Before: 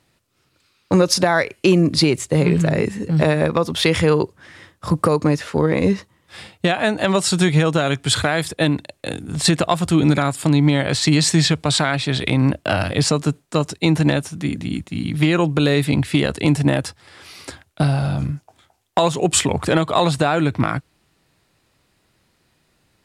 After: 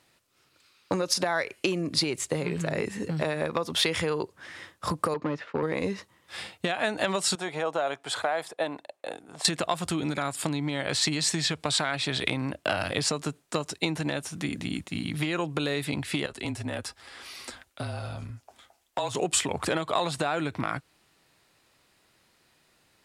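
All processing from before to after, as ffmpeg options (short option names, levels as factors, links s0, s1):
-filter_complex "[0:a]asettb=1/sr,asplit=3[s0][s1][s2];[s0]atrim=end=5.144[s3];[s1]atrim=start=5.14:end=5.63,asetpts=PTS-STARTPTS,afade=t=in:d=0.004:c=qsin,afade=t=out:st=0.486:d=0.004:c=qsin,asoftclip=type=hard:threshold=0.237,agate=range=0.0224:threshold=0.0447:ratio=3:release=100:detection=peak,highpass=110,lowpass=2600[s4];[s2]atrim=start=5.626[s5];[s3][s4]acrossfade=d=0.004:c1=hsin:c2=qsin[s6];[s6][s5]acrossfade=d=0.004:c1=qsin:c2=hsin,asettb=1/sr,asplit=3[s7][s8][s9];[s7]atrim=end=7.354[s10];[s8]atrim=start=7.35:end=9.45,asetpts=PTS-STARTPTS,afade=t=in:d=0.004:c=qsin,afade=t=out:st=2.096:d=0.004:c=qsin,bandpass=f=730:t=q:w=1.7,aemphasis=mode=production:type=75fm[s11];[s9]atrim=start=9.446[s12];[s10][s11]acrossfade=d=0.004:c1=hsin:c2=qsin[s13];[s13][s12]acrossfade=d=0.004:c1=qsin:c2=hsin,asettb=1/sr,asplit=3[s14][s15][s16];[s14]atrim=end=16.264[s17];[s15]atrim=start=16.26:end=19.15,asetpts=PTS-STARTPTS,afade=t=in:d=0.004:c=qsin,afade=t=out:st=2.886:d=0.004:c=qsin,aecho=1:1:7.1:0.34,atrim=end_sample=127449,acompressor=threshold=0.00708:ratio=1.5:attack=3.2:release=140:knee=1:detection=peak,afreqshift=-32[s18];[s16]atrim=start=19.146[s19];[s17][s18]acrossfade=d=0.004:c1=hsin:c2=qsin[s20];[s20][s19]acrossfade=d=0.004:c1=qsin:c2=hsin,acompressor=threshold=0.0891:ratio=6,lowshelf=f=270:g=-10.5"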